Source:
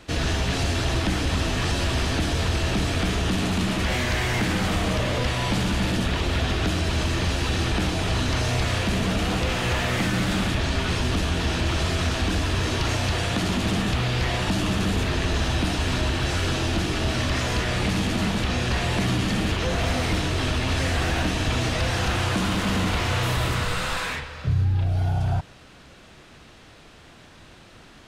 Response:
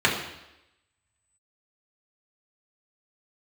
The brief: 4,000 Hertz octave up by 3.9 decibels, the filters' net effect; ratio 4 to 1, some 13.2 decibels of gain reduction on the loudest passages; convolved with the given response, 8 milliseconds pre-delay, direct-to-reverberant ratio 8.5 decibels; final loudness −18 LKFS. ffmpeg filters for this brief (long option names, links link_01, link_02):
-filter_complex "[0:a]equalizer=frequency=4000:width_type=o:gain=5,acompressor=threshold=-36dB:ratio=4,asplit=2[link_01][link_02];[1:a]atrim=start_sample=2205,adelay=8[link_03];[link_02][link_03]afir=irnorm=-1:irlink=0,volume=-26.5dB[link_04];[link_01][link_04]amix=inputs=2:normalize=0,volume=17.5dB"